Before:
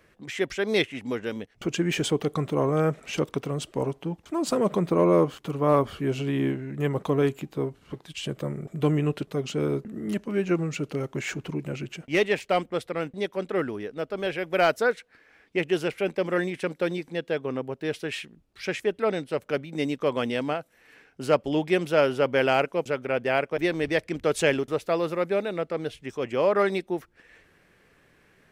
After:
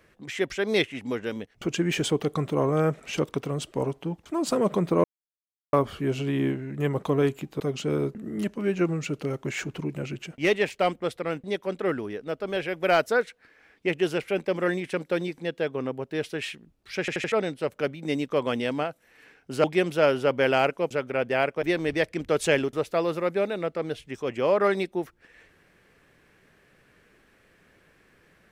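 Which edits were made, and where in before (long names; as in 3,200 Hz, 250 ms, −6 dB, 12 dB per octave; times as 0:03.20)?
0:05.04–0:05.73: silence
0:07.60–0:09.30: remove
0:18.70: stutter in place 0.08 s, 4 plays
0:21.34–0:21.59: remove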